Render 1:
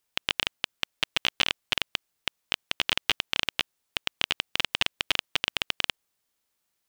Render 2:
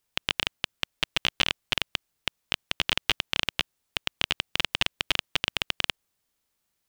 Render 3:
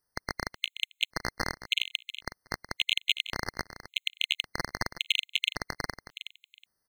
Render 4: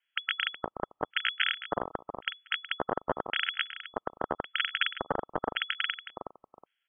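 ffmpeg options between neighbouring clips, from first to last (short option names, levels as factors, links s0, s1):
-af "lowshelf=f=200:g=7"
-af "aecho=1:1:369|738:0.237|0.0427,afftfilt=real='re*gt(sin(2*PI*0.9*pts/sr)*(1-2*mod(floor(b*sr/1024/2100),2)),0)':imag='im*gt(sin(2*PI*0.9*pts/sr)*(1-2*mod(floor(b*sr/1024/2100),2)),0)':win_size=1024:overlap=0.75"
-filter_complex "[0:a]acrossover=split=140|1100[s0][s1][s2];[s2]asoftclip=type=tanh:threshold=0.126[s3];[s0][s1][s3]amix=inputs=3:normalize=0,lowpass=f=2900:t=q:w=0.5098,lowpass=f=2900:t=q:w=0.6013,lowpass=f=2900:t=q:w=0.9,lowpass=f=2900:t=q:w=2.563,afreqshift=-3400,volume=1.78"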